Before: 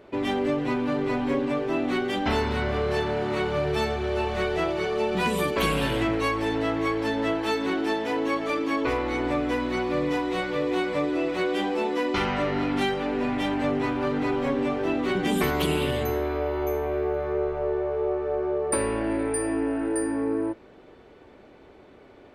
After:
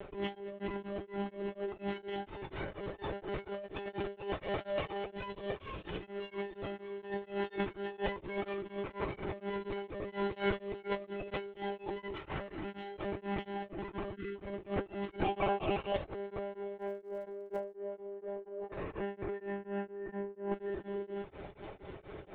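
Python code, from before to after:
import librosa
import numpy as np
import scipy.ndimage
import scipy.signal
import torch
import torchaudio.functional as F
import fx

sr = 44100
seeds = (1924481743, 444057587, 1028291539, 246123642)

p1 = fx.lower_of_two(x, sr, delay_ms=1.7, at=(4.41, 5.06))
p2 = fx.vowel_filter(p1, sr, vowel='a', at=(15.21, 15.95), fade=0.02)
p3 = p2 + fx.echo_single(p2, sr, ms=705, db=-16.5, dry=0)
p4 = fx.vibrato(p3, sr, rate_hz=3.1, depth_cents=34.0)
p5 = fx.lpc_monotone(p4, sr, seeds[0], pitch_hz=200.0, order=16)
p6 = fx.spec_erase(p5, sr, start_s=14.16, length_s=0.2, low_hz=490.0, high_hz=1100.0)
p7 = fx.dmg_crackle(p6, sr, seeds[1], per_s=100.0, level_db=-42.0, at=(16.77, 17.74), fade=0.02)
p8 = fx.notch_comb(p7, sr, f0_hz=240.0)
p9 = 10.0 ** (-20.5 / 20.0) * np.tanh(p8 / 10.0 ** (-20.5 / 20.0))
p10 = p8 + F.gain(torch.from_numpy(p9), -10.5).numpy()
p11 = fx.over_compress(p10, sr, threshold_db=-31.0, ratio=-0.5)
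p12 = p11 * np.abs(np.cos(np.pi * 4.2 * np.arange(len(p11)) / sr))
y = F.gain(torch.from_numpy(p12), -3.0).numpy()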